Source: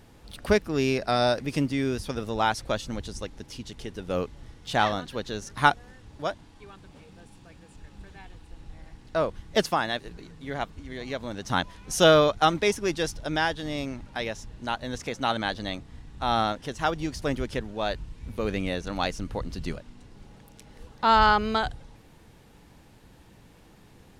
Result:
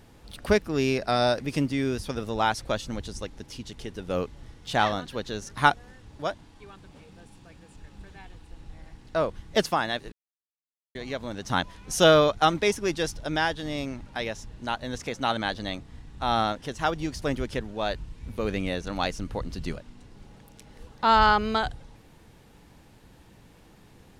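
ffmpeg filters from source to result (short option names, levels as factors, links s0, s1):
-filter_complex "[0:a]asplit=3[s0][s1][s2];[s0]atrim=end=10.12,asetpts=PTS-STARTPTS,afade=t=out:st=10.116:d=0.004:c=hsin[s3];[s1]atrim=start=10.12:end=10.95,asetpts=PTS-STARTPTS,volume=0[s4];[s2]atrim=start=10.95,asetpts=PTS-STARTPTS,afade=t=in:d=0.004:c=hsin[s5];[s3][s4][s5]concat=n=3:v=0:a=1"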